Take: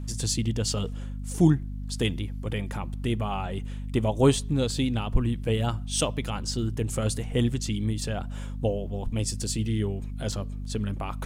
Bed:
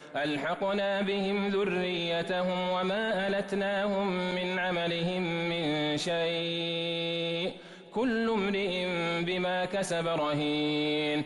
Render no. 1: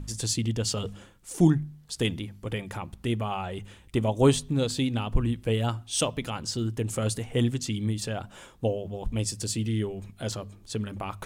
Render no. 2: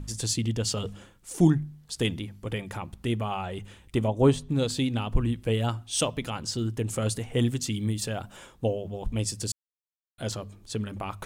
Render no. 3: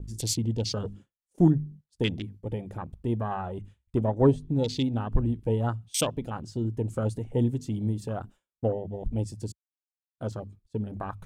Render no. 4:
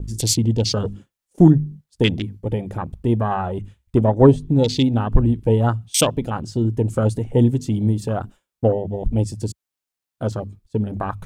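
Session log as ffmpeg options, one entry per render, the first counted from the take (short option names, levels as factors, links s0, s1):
-af "bandreject=f=50:t=h:w=4,bandreject=f=100:t=h:w=4,bandreject=f=150:t=h:w=4,bandreject=f=200:t=h:w=4,bandreject=f=250:t=h:w=4"
-filter_complex "[0:a]asplit=3[s0][s1][s2];[s0]afade=t=out:st=4.06:d=0.02[s3];[s1]highshelf=f=2400:g=-10,afade=t=in:st=4.06:d=0.02,afade=t=out:st=4.49:d=0.02[s4];[s2]afade=t=in:st=4.49:d=0.02[s5];[s3][s4][s5]amix=inputs=3:normalize=0,asettb=1/sr,asplit=3[s6][s7][s8];[s6]atrim=end=7.424[s9];[s7]atrim=start=7.42:end=8.37,asetpts=PTS-STARTPTS,afade=t=in:d=0.004:c=qsin,afade=t=out:st=0.946:d=0.004:c=qsin,highshelf=f=9800:g=8.5[s10];[s8]atrim=start=8.366[s11];[s9][s10]acrossfade=d=0.004:c1=hsin:c2=qsin[s12];[s12][s11]acrossfade=d=0.004:c1=qsin:c2=hsin,asplit=3[s13][s14][s15];[s13]atrim=end=9.52,asetpts=PTS-STARTPTS,afade=t=out:st=9.516:d=0.004:c=hsin[s16];[s14]atrim=start=9.52:end=10.18,asetpts=PTS-STARTPTS,volume=0[s17];[s15]atrim=start=10.18,asetpts=PTS-STARTPTS,afade=t=in:d=0.004:c=hsin[s18];[s16][s17][s18]concat=n=3:v=0:a=1"
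-af "afwtdn=0.0178,agate=range=0.0224:threshold=0.00794:ratio=3:detection=peak"
-af "volume=2.99,alimiter=limit=0.891:level=0:latency=1"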